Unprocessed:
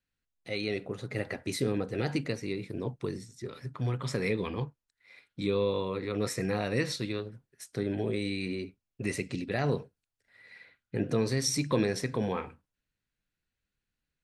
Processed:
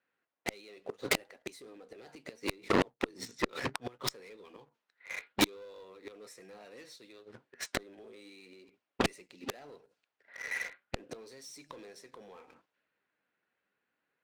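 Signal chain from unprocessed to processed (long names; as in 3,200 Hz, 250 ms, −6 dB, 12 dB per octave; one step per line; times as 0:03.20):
high-pass filter 410 Hz 12 dB per octave
low-pass that shuts in the quiet parts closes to 1,700 Hz, open at −33 dBFS
flanger 0.7 Hz, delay 1.4 ms, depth 4.5 ms, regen +80%
leveller curve on the samples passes 2
in parallel at −4 dB: hard clipping −35 dBFS, distortion −8 dB
on the sum: dynamic equaliser 1,700 Hz, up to −3 dB, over −44 dBFS, Q 0.75
gate with flip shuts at −27 dBFS, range −37 dB
harmonic generator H 7 −6 dB, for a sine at −26 dBFS
level +8 dB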